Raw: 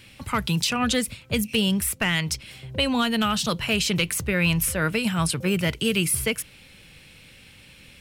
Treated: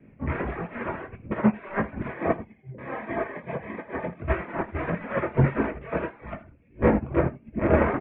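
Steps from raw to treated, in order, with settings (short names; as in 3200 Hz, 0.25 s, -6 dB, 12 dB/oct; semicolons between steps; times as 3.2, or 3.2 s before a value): wind noise 200 Hz -34 dBFS; wrapped overs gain 25.5 dB; steep low-pass 2300 Hz 48 dB/oct; reverb RT60 0.60 s, pre-delay 3 ms, DRR -1 dB; chorus 1.6 Hz, delay 18 ms, depth 6 ms; reverb removal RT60 0.96 s; 2.13–4.22 notch comb 1400 Hz; echo 80 ms -9.5 dB; upward expander 2.5:1, over -36 dBFS; gain +6.5 dB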